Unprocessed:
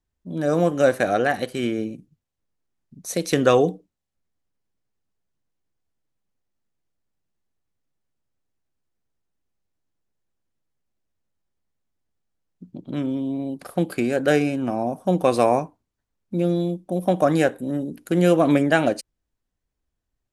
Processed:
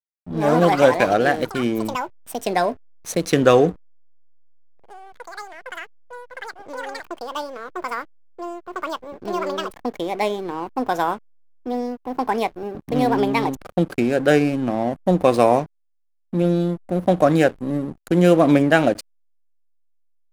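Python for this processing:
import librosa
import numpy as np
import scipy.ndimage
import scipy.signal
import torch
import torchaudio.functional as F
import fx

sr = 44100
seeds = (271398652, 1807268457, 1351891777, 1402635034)

y = fx.backlash(x, sr, play_db=-29.5)
y = fx.echo_pitch(y, sr, ms=110, semitones=6, count=3, db_per_echo=-6.0)
y = y * librosa.db_to_amplitude(3.0)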